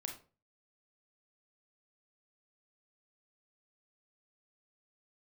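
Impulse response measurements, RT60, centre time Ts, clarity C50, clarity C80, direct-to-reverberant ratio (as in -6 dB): 0.35 s, 20 ms, 8.0 dB, 14.0 dB, 2.0 dB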